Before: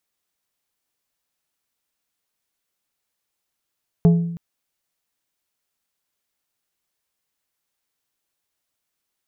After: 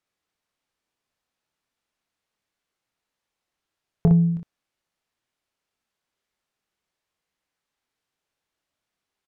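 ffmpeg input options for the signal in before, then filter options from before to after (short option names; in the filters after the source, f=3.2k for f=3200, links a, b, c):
-f lavfi -i "aevalsrc='0.398*pow(10,-3*t/0.85)*sin(2*PI*169*t)+0.133*pow(10,-3*t/0.448)*sin(2*PI*422.5*t)+0.0447*pow(10,-3*t/0.322)*sin(2*PI*676*t)+0.015*pow(10,-3*t/0.276)*sin(2*PI*845*t)+0.00501*pow(10,-3*t/0.229)*sin(2*PI*1098.5*t)':d=0.32:s=44100"
-filter_complex "[0:a]aemphasis=mode=reproduction:type=50fm,acompressor=threshold=-15dB:ratio=6,asplit=2[a][b];[b]aecho=0:1:25|60:0.398|0.562[c];[a][c]amix=inputs=2:normalize=0"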